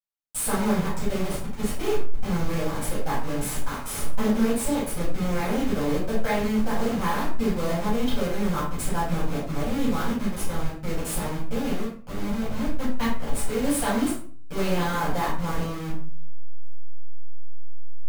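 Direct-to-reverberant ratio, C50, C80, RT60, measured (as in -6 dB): -10.5 dB, 3.0 dB, 8.0 dB, 0.45 s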